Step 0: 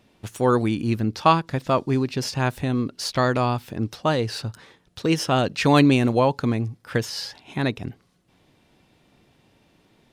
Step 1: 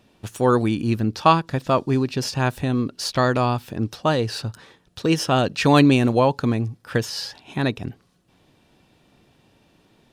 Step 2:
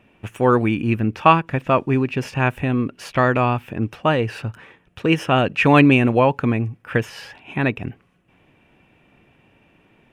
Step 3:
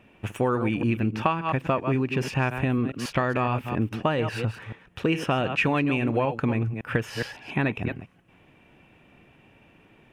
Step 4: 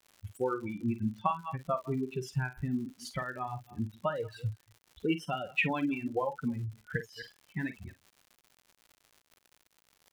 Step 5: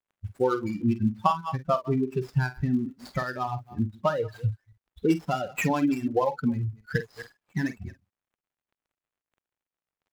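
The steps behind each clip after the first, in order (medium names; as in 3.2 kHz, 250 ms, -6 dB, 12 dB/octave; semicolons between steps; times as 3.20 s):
band-stop 2.1 kHz, Q 13; trim +1.5 dB
resonant high shelf 3.3 kHz -9 dB, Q 3; trim +1.5 dB
chunks repeated in reverse 139 ms, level -11 dB; compression 12:1, threshold -20 dBFS, peak gain reduction 14 dB
expander on every frequency bin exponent 3; doubling 47 ms -11.5 dB; crackle 140 per s -44 dBFS; trim -1.5 dB
median filter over 15 samples; trim +7.5 dB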